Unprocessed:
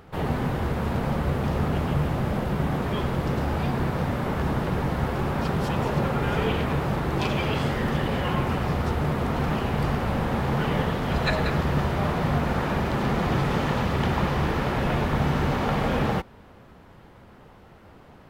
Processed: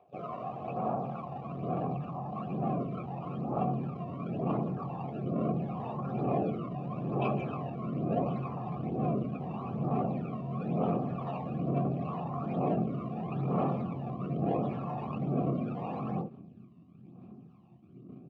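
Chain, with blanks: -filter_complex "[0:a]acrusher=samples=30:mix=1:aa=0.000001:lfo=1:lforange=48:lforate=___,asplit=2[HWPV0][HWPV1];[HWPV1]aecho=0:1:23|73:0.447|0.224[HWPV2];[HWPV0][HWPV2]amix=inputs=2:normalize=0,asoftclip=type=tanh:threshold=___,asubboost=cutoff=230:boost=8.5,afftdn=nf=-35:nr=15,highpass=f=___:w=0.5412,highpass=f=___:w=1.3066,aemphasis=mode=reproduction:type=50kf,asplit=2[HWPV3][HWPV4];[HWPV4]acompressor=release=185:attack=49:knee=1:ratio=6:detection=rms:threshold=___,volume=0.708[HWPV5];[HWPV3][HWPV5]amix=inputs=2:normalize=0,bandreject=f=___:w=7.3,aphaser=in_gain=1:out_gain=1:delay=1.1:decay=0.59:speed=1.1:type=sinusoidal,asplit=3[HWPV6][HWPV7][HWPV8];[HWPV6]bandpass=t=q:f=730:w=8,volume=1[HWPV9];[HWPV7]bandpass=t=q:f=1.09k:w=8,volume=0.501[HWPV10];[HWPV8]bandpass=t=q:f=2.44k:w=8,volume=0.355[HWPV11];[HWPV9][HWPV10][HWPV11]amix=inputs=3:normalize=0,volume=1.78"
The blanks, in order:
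0.79, 0.0562, 130, 130, 0.0355, 1.5k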